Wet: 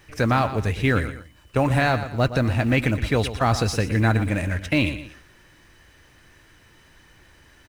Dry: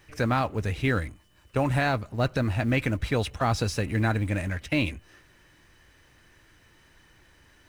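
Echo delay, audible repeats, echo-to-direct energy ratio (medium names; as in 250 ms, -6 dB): 118 ms, 2, -11.5 dB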